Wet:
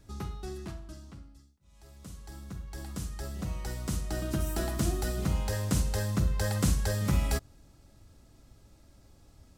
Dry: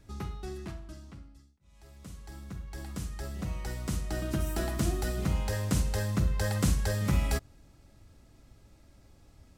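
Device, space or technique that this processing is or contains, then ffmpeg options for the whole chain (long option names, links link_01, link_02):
exciter from parts: -filter_complex "[0:a]asplit=2[link_01][link_02];[link_02]highpass=frequency=2000:width=0.5412,highpass=frequency=2000:width=1.3066,asoftclip=type=tanh:threshold=-38dB,volume=-9dB[link_03];[link_01][link_03]amix=inputs=2:normalize=0"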